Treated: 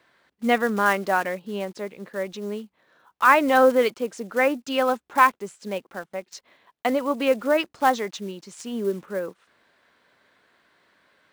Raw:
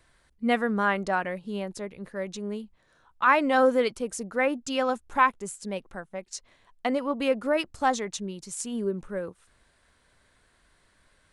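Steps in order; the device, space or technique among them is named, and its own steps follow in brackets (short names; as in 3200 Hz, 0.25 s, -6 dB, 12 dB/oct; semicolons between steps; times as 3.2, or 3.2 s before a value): early digital voice recorder (BPF 230–4000 Hz; block floating point 5-bit); gain +4.5 dB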